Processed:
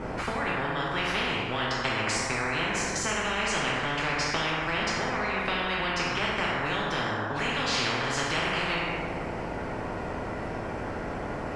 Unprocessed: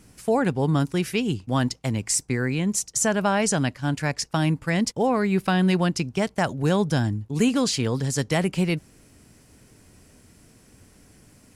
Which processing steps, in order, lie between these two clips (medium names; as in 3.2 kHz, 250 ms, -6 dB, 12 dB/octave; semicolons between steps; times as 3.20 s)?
compression, threshold -28 dBFS, peak gain reduction 11.5 dB; low-pass 1.1 kHz 12 dB/octave; two-slope reverb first 0.92 s, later 2.7 s, DRR -5.5 dB; spectrum-flattening compressor 10:1